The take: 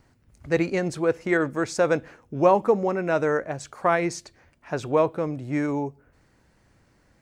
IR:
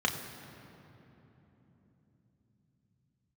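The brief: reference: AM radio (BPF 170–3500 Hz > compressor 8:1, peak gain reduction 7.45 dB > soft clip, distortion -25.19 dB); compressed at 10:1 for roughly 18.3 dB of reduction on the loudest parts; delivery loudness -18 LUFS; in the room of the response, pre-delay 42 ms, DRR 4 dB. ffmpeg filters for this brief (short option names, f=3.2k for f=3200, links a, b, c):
-filter_complex "[0:a]acompressor=threshold=-32dB:ratio=10,asplit=2[a][b];[1:a]atrim=start_sample=2205,adelay=42[c];[b][c]afir=irnorm=-1:irlink=0,volume=-13.5dB[d];[a][d]amix=inputs=2:normalize=0,highpass=170,lowpass=3.5k,acompressor=threshold=-35dB:ratio=8,asoftclip=threshold=-26dB,volume=23.5dB"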